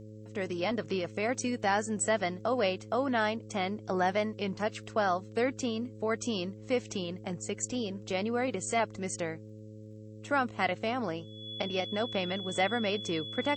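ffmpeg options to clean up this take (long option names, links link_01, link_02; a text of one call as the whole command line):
ffmpeg -i in.wav -af "adeclick=threshold=4,bandreject=frequency=107.3:width_type=h:width=4,bandreject=frequency=214.6:width_type=h:width=4,bandreject=frequency=321.9:width_type=h:width=4,bandreject=frequency=429.2:width_type=h:width=4,bandreject=frequency=536.5:width_type=h:width=4,bandreject=frequency=3400:width=30,agate=range=-21dB:threshold=-39dB" out.wav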